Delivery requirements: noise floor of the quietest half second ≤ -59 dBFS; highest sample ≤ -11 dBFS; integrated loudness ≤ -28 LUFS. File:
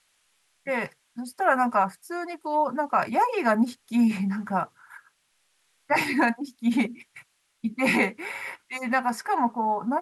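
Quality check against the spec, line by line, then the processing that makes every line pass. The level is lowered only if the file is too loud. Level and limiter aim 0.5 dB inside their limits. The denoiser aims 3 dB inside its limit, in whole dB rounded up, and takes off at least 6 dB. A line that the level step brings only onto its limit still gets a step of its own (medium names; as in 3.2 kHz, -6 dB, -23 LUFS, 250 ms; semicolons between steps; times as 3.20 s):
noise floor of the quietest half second -70 dBFS: pass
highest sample -10.0 dBFS: fail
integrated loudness -26.0 LUFS: fail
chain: trim -2.5 dB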